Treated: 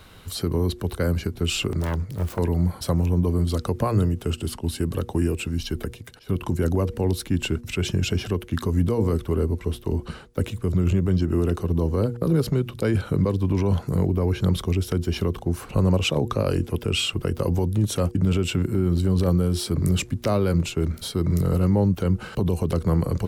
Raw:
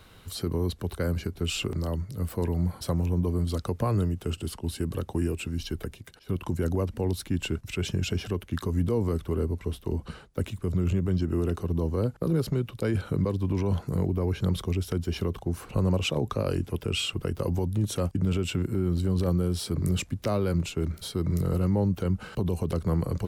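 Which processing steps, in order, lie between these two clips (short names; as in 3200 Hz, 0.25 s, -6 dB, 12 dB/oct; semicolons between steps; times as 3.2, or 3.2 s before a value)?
1.8–2.39 self-modulated delay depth 0.91 ms; de-hum 119.3 Hz, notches 4; gain +5 dB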